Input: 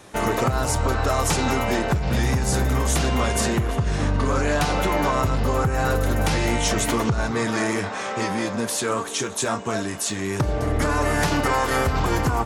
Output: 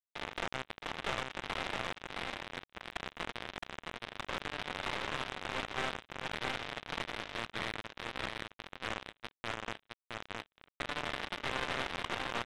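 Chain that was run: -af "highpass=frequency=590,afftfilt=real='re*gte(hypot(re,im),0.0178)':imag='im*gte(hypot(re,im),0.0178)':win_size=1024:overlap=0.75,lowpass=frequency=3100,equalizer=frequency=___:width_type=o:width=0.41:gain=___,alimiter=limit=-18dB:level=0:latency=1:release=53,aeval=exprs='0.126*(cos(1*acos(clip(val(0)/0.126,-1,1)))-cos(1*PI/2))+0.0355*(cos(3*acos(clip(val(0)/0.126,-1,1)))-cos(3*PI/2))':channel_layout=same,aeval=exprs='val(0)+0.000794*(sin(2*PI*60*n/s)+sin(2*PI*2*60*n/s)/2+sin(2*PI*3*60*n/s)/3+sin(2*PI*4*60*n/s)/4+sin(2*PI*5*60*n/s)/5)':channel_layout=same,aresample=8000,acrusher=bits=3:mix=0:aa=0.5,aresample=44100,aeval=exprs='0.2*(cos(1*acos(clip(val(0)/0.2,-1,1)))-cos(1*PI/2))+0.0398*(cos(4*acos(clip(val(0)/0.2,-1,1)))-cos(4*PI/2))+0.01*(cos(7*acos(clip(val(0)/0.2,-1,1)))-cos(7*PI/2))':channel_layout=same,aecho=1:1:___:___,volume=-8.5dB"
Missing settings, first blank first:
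2100, 6.5, 666, 0.668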